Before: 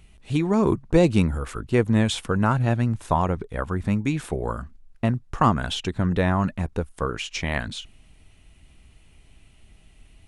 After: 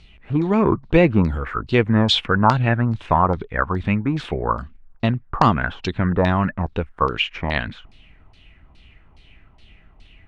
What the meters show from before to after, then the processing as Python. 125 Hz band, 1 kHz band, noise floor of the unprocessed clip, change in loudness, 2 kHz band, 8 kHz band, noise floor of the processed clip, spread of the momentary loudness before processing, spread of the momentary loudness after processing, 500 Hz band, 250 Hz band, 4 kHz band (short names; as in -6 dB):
+2.5 dB, +6.0 dB, -54 dBFS, +3.5 dB, +6.5 dB, n/a, -51 dBFS, 9 LU, 9 LU, +3.5 dB, +2.5 dB, +7.5 dB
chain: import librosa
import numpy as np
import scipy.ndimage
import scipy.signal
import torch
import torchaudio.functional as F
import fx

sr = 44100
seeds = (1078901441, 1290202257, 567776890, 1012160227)

y = fx.filter_lfo_lowpass(x, sr, shape='saw_down', hz=2.4, low_hz=870.0, high_hz=4800.0, q=3.6)
y = y * librosa.db_to_amplitude(2.5)